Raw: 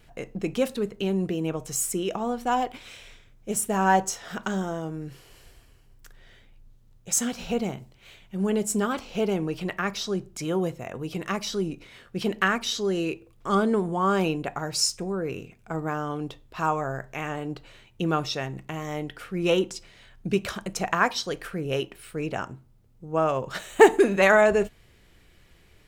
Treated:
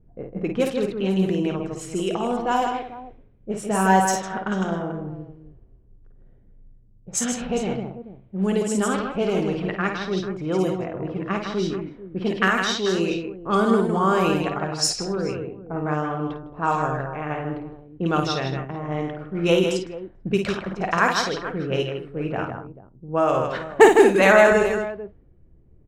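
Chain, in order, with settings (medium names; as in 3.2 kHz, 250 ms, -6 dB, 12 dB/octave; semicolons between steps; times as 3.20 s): multi-tap echo 53/157/222/441 ms -5.5/-5.5/-11.5/-14 dB; level-controlled noise filter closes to 320 Hz, open at -18.5 dBFS; trim +2 dB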